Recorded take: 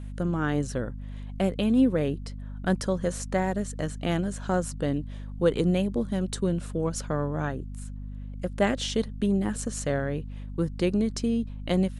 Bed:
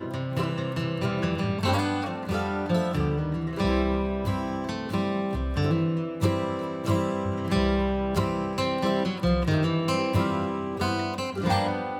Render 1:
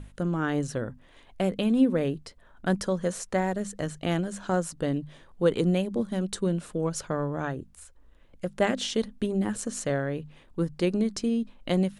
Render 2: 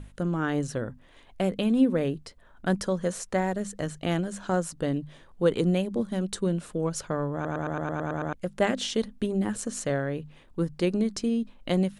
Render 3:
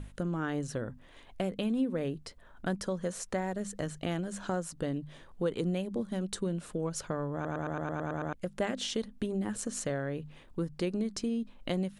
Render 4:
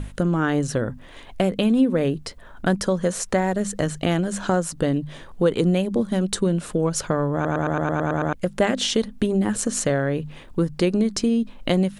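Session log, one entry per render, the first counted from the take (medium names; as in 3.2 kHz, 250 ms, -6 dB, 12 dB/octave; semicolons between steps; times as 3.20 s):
hum notches 50/100/150/200/250 Hz
7.34 s: stutter in place 0.11 s, 9 plays
compression 2:1, threshold -34 dBFS, peak gain reduction 10 dB
trim +12 dB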